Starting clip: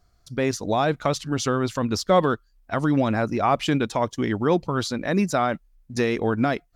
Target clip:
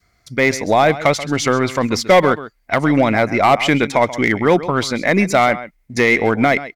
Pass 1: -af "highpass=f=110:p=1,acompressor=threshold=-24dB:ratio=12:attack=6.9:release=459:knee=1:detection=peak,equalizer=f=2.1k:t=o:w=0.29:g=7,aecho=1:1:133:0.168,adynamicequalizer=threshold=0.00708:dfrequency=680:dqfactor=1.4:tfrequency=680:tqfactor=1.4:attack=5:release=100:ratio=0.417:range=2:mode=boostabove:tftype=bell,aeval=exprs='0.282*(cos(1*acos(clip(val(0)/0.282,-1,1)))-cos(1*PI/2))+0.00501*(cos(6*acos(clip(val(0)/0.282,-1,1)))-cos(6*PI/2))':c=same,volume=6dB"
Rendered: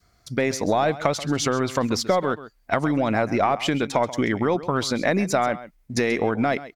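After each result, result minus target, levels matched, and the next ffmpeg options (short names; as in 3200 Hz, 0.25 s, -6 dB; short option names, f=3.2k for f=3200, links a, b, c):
compressor: peak gain reduction +13.5 dB; 2000 Hz band -3.0 dB
-af "highpass=f=110:p=1,equalizer=f=2.1k:t=o:w=0.29:g=7,aecho=1:1:133:0.168,adynamicequalizer=threshold=0.00708:dfrequency=680:dqfactor=1.4:tfrequency=680:tqfactor=1.4:attack=5:release=100:ratio=0.417:range=2:mode=boostabove:tftype=bell,aeval=exprs='0.282*(cos(1*acos(clip(val(0)/0.282,-1,1)))-cos(1*PI/2))+0.00501*(cos(6*acos(clip(val(0)/0.282,-1,1)))-cos(6*PI/2))':c=same,volume=6dB"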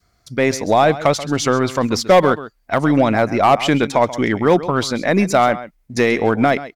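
2000 Hz band -4.0 dB
-af "highpass=f=110:p=1,equalizer=f=2.1k:t=o:w=0.29:g=17,aecho=1:1:133:0.168,adynamicequalizer=threshold=0.00708:dfrequency=680:dqfactor=1.4:tfrequency=680:tqfactor=1.4:attack=5:release=100:ratio=0.417:range=2:mode=boostabove:tftype=bell,aeval=exprs='0.282*(cos(1*acos(clip(val(0)/0.282,-1,1)))-cos(1*PI/2))+0.00501*(cos(6*acos(clip(val(0)/0.282,-1,1)))-cos(6*PI/2))':c=same,volume=6dB"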